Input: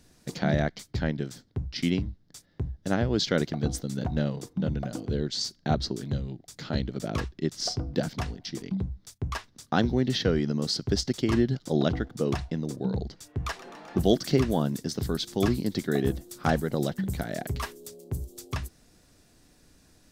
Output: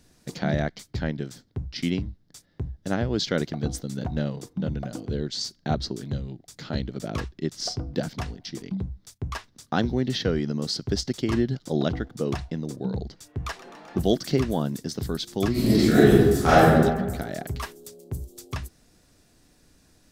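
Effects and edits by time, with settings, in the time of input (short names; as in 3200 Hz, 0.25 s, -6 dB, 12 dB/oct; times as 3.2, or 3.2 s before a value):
15.51–16.68 reverb throw, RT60 1.3 s, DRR -11.5 dB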